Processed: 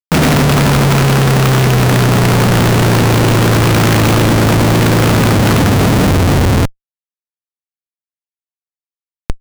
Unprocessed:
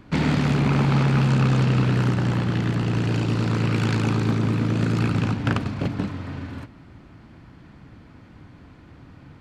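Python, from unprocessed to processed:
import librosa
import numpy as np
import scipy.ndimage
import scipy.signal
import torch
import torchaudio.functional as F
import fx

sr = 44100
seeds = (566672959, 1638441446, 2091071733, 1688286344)

y = fx.leveller(x, sr, passes=2)
y = fx.schmitt(y, sr, flips_db=-27.5)
y = F.gain(torch.from_numpy(y), 8.0).numpy()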